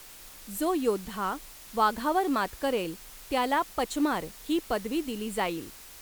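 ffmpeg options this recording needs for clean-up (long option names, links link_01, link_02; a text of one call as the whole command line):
ffmpeg -i in.wav -af "afftdn=noise_reduction=26:noise_floor=-48" out.wav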